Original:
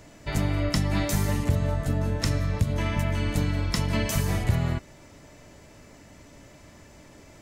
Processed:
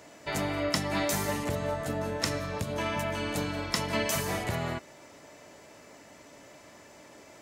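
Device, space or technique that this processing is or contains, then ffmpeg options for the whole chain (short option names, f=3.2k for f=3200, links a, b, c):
filter by subtraction: -filter_complex "[0:a]asettb=1/sr,asplit=3[a][b][c];[a]atrim=end=2.404[d];[b]atrim=start=2.4:end=3.62,asetpts=PTS-STARTPTS,afade=t=in:d=0.004:c=qsin,afade=t=out:st=1.216:d=0.004:c=qsin,bandreject=f=2k:w=14[e];[c]atrim=start=3.616[f];[d][e]acrossfade=d=0.004:c1=hsin:c2=qsin[g];[g][f]acrossfade=d=0.004:c1=qsin:c2=hsin,asplit=2[h][i];[i]lowpass=600,volume=-1[j];[h][j]amix=inputs=2:normalize=0"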